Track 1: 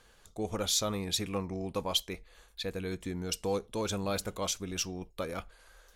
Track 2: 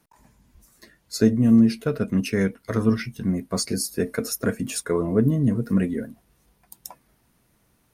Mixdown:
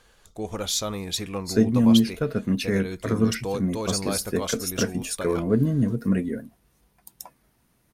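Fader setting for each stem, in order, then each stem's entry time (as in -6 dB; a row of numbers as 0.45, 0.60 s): +3.0, -1.5 dB; 0.00, 0.35 s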